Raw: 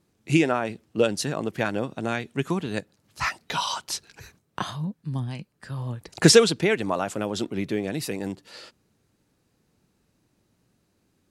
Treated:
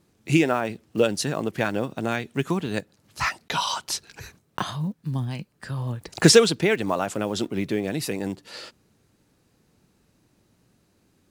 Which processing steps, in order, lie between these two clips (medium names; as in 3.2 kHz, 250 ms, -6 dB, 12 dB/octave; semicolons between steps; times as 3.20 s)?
block-companded coder 7-bit; in parallel at -3 dB: compression, threshold -36 dBFS, peak gain reduction 24 dB